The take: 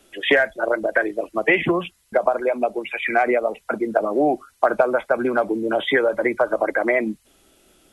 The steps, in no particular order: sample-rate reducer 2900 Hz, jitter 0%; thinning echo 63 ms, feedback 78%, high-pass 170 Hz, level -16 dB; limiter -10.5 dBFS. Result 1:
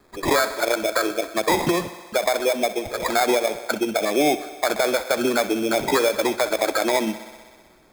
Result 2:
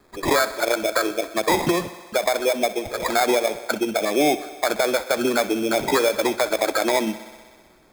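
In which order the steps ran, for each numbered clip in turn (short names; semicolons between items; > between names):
sample-rate reducer > thinning echo > limiter; sample-rate reducer > limiter > thinning echo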